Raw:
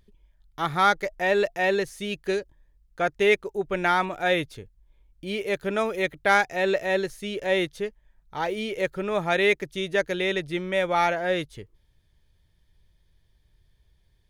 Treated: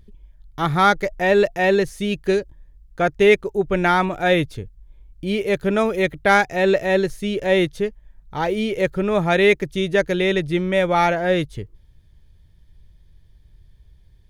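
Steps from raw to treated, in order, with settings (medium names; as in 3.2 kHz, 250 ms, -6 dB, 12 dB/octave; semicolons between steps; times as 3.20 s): bass shelf 300 Hz +10 dB; trim +3.5 dB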